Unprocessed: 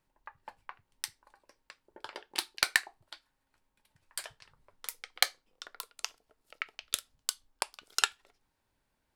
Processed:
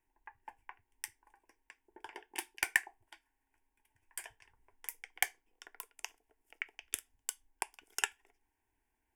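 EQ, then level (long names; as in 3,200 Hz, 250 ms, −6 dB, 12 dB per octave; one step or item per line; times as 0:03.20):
phaser with its sweep stopped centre 840 Hz, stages 8
−1.5 dB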